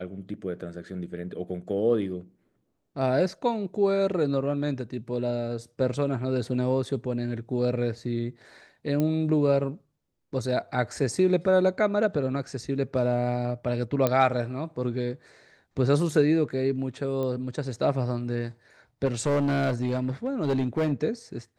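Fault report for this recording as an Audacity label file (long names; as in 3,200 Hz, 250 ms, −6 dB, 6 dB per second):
9.000000	9.000000	click −15 dBFS
14.070000	14.070000	click −10 dBFS
17.230000	17.230000	click −21 dBFS
19.050000	20.930000	clipping −21 dBFS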